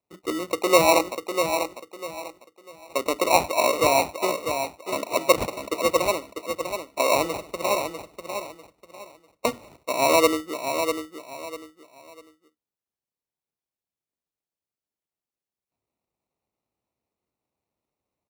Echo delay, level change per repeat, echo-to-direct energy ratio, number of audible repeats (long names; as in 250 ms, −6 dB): 647 ms, −11.0 dB, −6.5 dB, 3